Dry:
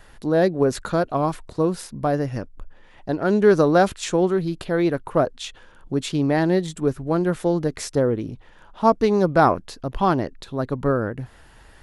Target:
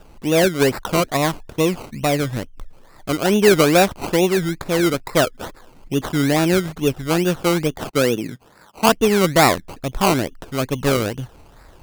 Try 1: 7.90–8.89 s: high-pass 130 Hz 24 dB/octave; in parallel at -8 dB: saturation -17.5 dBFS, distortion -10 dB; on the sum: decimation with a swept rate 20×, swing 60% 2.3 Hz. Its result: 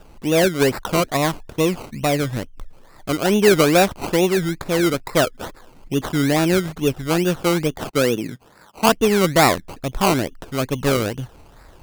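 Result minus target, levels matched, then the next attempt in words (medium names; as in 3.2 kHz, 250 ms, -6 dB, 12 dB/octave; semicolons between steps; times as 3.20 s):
saturation: distortion +7 dB
7.90–8.89 s: high-pass 130 Hz 24 dB/octave; in parallel at -8 dB: saturation -11 dBFS, distortion -16 dB; on the sum: decimation with a swept rate 20×, swing 60% 2.3 Hz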